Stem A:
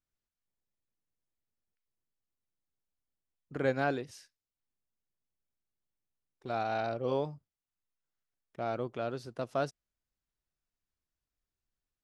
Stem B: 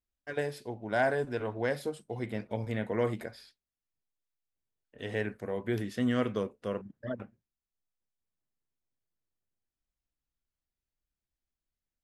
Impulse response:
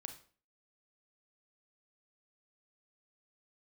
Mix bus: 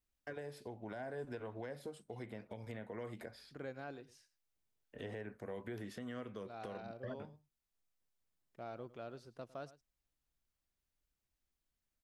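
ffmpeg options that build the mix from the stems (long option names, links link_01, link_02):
-filter_complex "[0:a]volume=-11.5dB,asplit=2[link_01][link_02];[link_02]volume=-18.5dB[link_03];[1:a]acrossover=split=540|1400[link_04][link_05][link_06];[link_04]acompressor=threshold=-42dB:ratio=4[link_07];[link_05]acompressor=threshold=-46dB:ratio=4[link_08];[link_06]acompressor=threshold=-54dB:ratio=4[link_09];[link_07][link_08][link_09]amix=inputs=3:normalize=0,volume=2dB[link_10];[link_03]aecho=0:1:106:1[link_11];[link_01][link_10][link_11]amix=inputs=3:normalize=0,alimiter=level_in=10.5dB:limit=-24dB:level=0:latency=1:release=465,volume=-10.5dB"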